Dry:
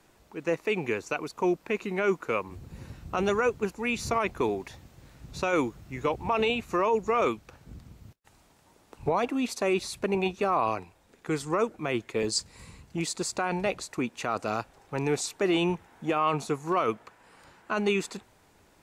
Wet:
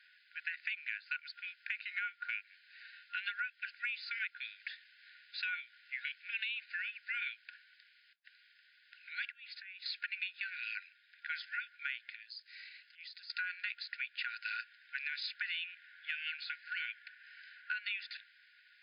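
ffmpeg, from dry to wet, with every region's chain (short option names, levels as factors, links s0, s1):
-filter_complex "[0:a]asettb=1/sr,asplit=3[s0][s1][s2];[s0]atrim=end=9.294[s3];[s1]atrim=start=9.29:end=9.86,asetpts=PTS-STARTPTS,afade=t=in:d=0.004:c=qsin,afade=t=out:st=0.566:d=0.004:c=qsin,lowpass=f=2100:p=1,acompressor=threshold=0.0112:ratio=8:attack=3.2:release=140:knee=1:detection=peak[s4];[s2]atrim=start=9.856[s5];[s3][s4]acrossfade=d=0.004:c1=hsin:c2=qsin[s6];[s6][s5]acrossfade=d=0.004:c1=qsin:c2=hsin,asettb=1/sr,asplit=3[s7][s8][s9];[s7]atrim=end=12.034[s10];[s8]atrim=start=12.03:end=13.3,asetpts=PTS-STARTPTS,afade=t=in:d=0.004:c=qsin,afade=t=out:st=1.266:d=0.004:c=qsin,equalizer=f=6000:w=2.1:g=4.5,acompressor=threshold=0.00794:ratio=16:attack=3.2:release=140:knee=1:detection=peak,aeval=exprs='clip(val(0),-1,0.0251)':c=same[s11];[s9]atrim=start=13.296[s12];[s10][s11]acrossfade=d=0.004:c1=hsin:c2=qsin[s13];[s13][s12]acrossfade=d=0.004:c1=qsin:c2=hsin,afftfilt=real='re*between(b*sr/4096,1400,5100)':imag='im*between(b*sr/4096,1400,5100)':win_size=4096:overlap=0.75,highshelf=f=2600:g=-8.5,acompressor=threshold=0.00708:ratio=12,volume=2.51"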